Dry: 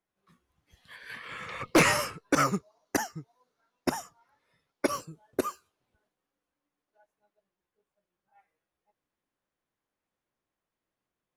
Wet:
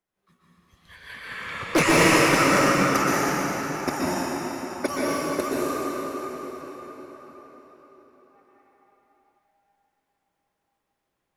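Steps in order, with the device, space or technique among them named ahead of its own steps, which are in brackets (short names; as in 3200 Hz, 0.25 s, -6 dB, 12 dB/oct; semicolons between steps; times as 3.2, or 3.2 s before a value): cathedral (reverb RT60 5.2 s, pre-delay 0.116 s, DRR -8 dB)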